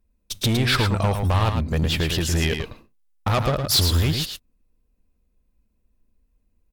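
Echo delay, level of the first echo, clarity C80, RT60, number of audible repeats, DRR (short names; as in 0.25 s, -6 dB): 0.11 s, -6.5 dB, none, none, 1, none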